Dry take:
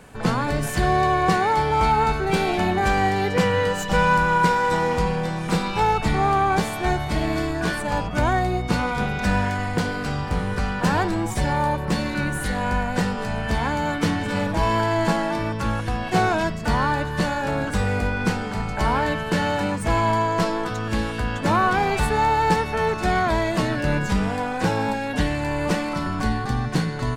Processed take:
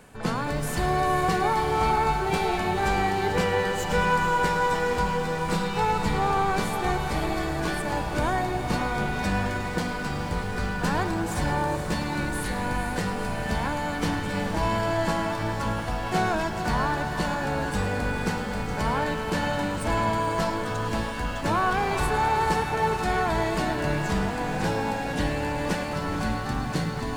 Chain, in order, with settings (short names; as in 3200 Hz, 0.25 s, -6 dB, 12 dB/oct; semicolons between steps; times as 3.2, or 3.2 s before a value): reverse; upward compressor, threshold -28 dBFS; reverse; high shelf 8700 Hz +4 dB; notches 60/120/180 Hz; on a send: diffused feedback echo 0.483 s, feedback 66%, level -8 dB; on the sum: lo-fi delay 0.107 s, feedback 80%, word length 7-bit, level -14 dB; gain -5 dB